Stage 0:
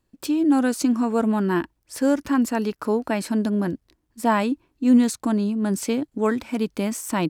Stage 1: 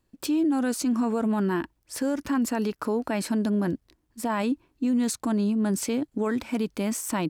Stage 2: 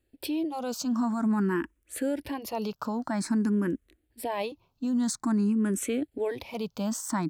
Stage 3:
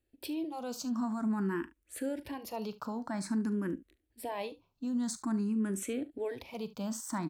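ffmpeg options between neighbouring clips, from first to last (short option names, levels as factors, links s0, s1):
-af "alimiter=limit=0.119:level=0:latency=1:release=46"
-filter_complex "[0:a]asplit=2[s0][s1];[s1]afreqshift=0.5[s2];[s0][s2]amix=inputs=2:normalize=1"
-af "aecho=1:1:41|72:0.168|0.126,volume=0.473"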